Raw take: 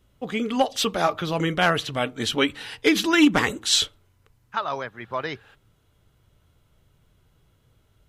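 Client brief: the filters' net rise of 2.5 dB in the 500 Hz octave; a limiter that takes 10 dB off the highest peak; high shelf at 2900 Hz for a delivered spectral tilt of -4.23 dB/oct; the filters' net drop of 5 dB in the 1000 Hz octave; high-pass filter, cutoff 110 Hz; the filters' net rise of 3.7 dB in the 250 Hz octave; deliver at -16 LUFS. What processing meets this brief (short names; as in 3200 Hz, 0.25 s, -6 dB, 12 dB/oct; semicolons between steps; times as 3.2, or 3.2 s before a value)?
HPF 110 Hz; bell 250 Hz +4 dB; bell 500 Hz +4.5 dB; bell 1000 Hz -9 dB; high shelf 2900 Hz -3.5 dB; gain +10 dB; limiter -4.5 dBFS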